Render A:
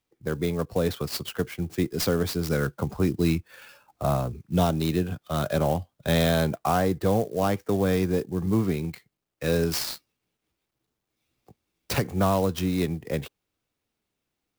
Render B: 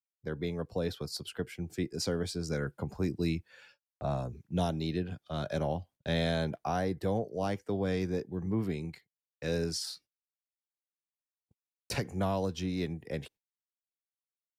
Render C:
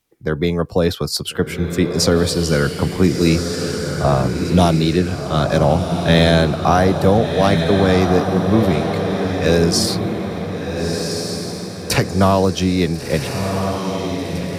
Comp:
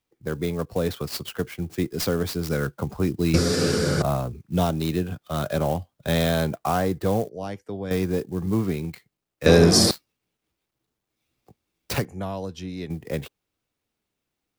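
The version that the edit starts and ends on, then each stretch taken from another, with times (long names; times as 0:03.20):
A
0:03.34–0:04.02: punch in from C
0:07.29–0:07.91: punch in from B
0:09.46–0:09.91: punch in from C
0:12.05–0:12.90: punch in from B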